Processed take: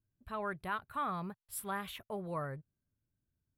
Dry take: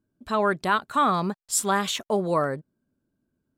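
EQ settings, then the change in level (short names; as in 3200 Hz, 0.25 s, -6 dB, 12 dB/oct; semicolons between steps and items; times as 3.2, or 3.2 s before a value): EQ curve 110 Hz 0 dB, 230 Hz -17 dB, 2400 Hz -11 dB, 7000 Hz -29 dB, 11000 Hz -7 dB; -1.5 dB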